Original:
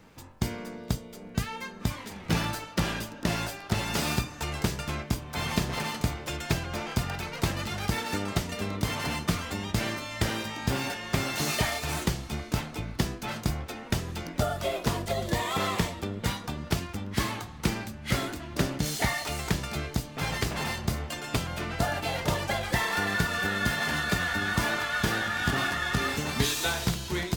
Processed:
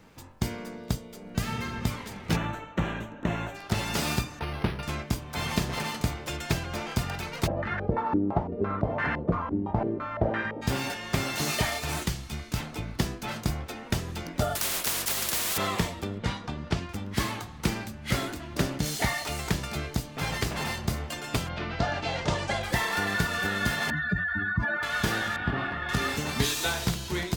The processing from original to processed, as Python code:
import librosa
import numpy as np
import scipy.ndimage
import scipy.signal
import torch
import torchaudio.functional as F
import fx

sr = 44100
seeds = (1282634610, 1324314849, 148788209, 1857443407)

y = fx.reverb_throw(x, sr, start_s=1.21, length_s=0.54, rt60_s=2.4, drr_db=0.5)
y = fx.moving_average(y, sr, points=9, at=(2.35, 3.54), fade=0.02)
y = fx.resample_linear(y, sr, factor=6, at=(4.39, 4.83))
y = fx.filter_held_lowpass(y, sr, hz=5.9, low_hz=320.0, high_hz=1700.0, at=(7.46, 10.61), fade=0.02)
y = fx.peak_eq(y, sr, hz=500.0, db=-6.5, octaves=2.7, at=(12.03, 12.6))
y = fx.spectral_comp(y, sr, ratio=10.0, at=(14.55, 15.58))
y = fx.air_absorb(y, sr, metres=91.0, at=(16.18, 16.89))
y = fx.lowpass(y, sr, hz=fx.line((21.48, 4400.0), (22.62, 9200.0)), slope=24, at=(21.48, 22.62), fade=0.02)
y = fx.spec_expand(y, sr, power=2.5, at=(23.9, 24.83))
y = fx.air_absorb(y, sr, metres=420.0, at=(25.36, 25.89))